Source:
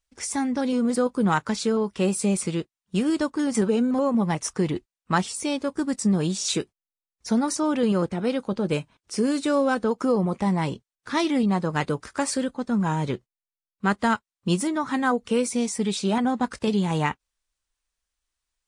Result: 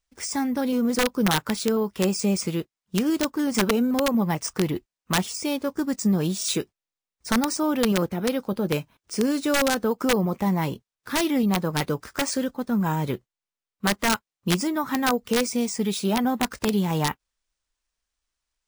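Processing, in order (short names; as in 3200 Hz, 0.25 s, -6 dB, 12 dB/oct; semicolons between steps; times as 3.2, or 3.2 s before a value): careless resampling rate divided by 3×, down none, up hold; wrapped overs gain 13.5 dB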